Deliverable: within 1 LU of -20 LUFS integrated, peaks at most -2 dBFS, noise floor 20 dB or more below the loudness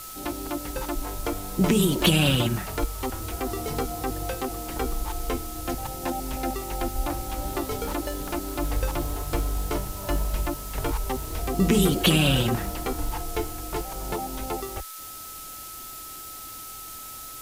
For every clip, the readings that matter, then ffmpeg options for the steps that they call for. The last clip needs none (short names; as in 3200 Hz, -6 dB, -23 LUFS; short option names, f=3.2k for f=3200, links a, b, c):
steady tone 1300 Hz; tone level -43 dBFS; noise floor -40 dBFS; noise floor target -48 dBFS; loudness -28.0 LUFS; peak -6.0 dBFS; loudness target -20.0 LUFS
-> -af "bandreject=f=1.3k:w=30"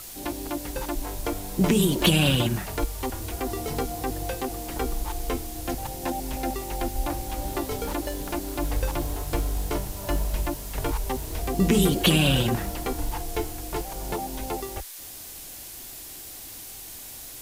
steady tone none; noise floor -41 dBFS; noise floor target -48 dBFS
-> -af "afftdn=nr=7:nf=-41"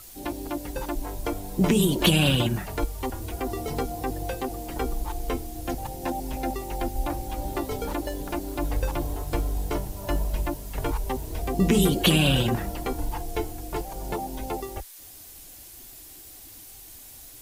noise floor -46 dBFS; noise floor target -48 dBFS
-> -af "afftdn=nr=6:nf=-46"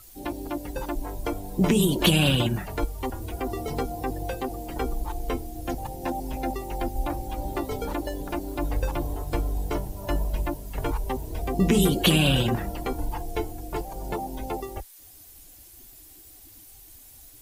noise floor -49 dBFS; loudness -28.0 LUFS; peak -6.5 dBFS; loudness target -20.0 LUFS
-> -af "volume=8dB,alimiter=limit=-2dB:level=0:latency=1"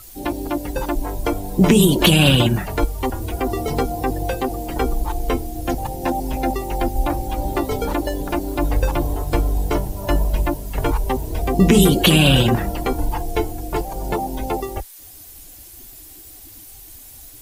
loudness -20.0 LUFS; peak -2.0 dBFS; noise floor -41 dBFS